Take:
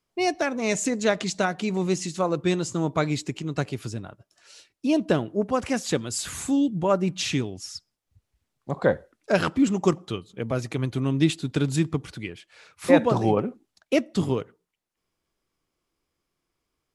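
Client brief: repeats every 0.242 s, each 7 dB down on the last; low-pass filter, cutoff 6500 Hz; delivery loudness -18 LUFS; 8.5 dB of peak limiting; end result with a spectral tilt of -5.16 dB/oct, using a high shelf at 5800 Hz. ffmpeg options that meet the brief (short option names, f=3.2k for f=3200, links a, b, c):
-af "lowpass=6.5k,highshelf=f=5.8k:g=6,alimiter=limit=-13dB:level=0:latency=1,aecho=1:1:242|484|726|968|1210:0.447|0.201|0.0905|0.0407|0.0183,volume=8dB"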